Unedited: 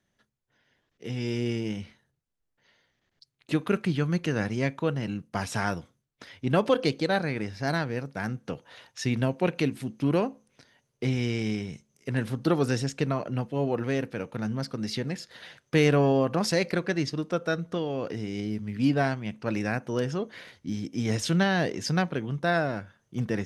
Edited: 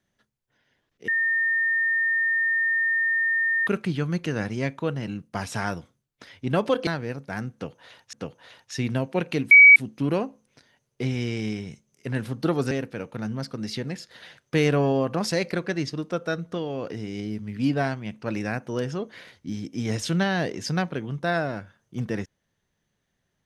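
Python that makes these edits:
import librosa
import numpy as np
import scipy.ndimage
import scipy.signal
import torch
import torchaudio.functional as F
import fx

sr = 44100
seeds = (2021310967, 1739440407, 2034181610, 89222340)

y = fx.edit(x, sr, fx.bleep(start_s=1.08, length_s=2.59, hz=1820.0, db=-20.0),
    fx.cut(start_s=6.87, length_s=0.87),
    fx.repeat(start_s=8.4, length_s=0.6, count=2),
    fx.insert_tone(at_s=9.78, length_s=0.25, hz=2270.0, db=-7.0),
    fx.cut(start_s=12.73, length_s=1.18), tone=tone)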